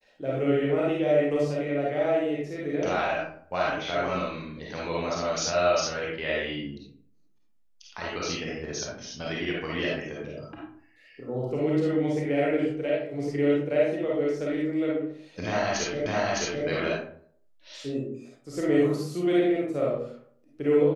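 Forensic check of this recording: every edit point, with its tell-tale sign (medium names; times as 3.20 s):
16.06 s: repeat of the last 0.61 s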